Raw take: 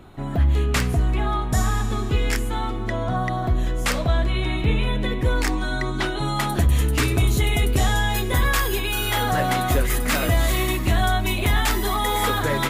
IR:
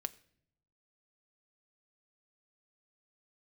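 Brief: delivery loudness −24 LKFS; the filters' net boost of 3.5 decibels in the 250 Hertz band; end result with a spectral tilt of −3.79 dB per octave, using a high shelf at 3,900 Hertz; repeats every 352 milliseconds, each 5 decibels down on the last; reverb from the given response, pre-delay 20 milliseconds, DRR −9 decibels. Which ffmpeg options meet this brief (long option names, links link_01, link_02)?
-filter_complex "[0:a]equalizer=frequency=250:width_type=o:gain=4.5,highshelf=frequency=3900:gain=8.5,aecho=1:1:352|704|1056|1408|1760|2112|2464:0.562|0.315|0.176|0.0988|0.0553|0.031|0.0173,asplit=2[link_01][link_02];[1:a]atrim=start_sample=2205,adelay=20[link_03];[link_02][link_03]afir=irnorm=-1:irlink=0,volume=10.5dB[link_04];[link_01][link_04]amix=inputs=2:normalize=0,volume=-15dB"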